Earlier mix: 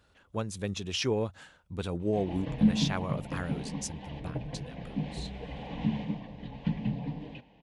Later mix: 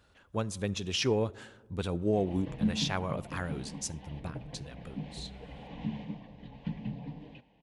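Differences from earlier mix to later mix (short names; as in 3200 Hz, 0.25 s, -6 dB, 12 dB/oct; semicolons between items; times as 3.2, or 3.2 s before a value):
background -6.0 dB; reverb: on, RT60 1.4 s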